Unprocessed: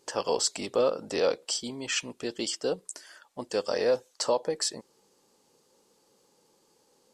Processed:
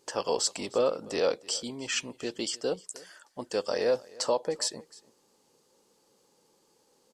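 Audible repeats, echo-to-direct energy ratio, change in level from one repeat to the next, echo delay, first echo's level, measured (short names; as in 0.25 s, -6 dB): 1, -21.5 dB, no steady repeat, 0.305 s, -21.5 dB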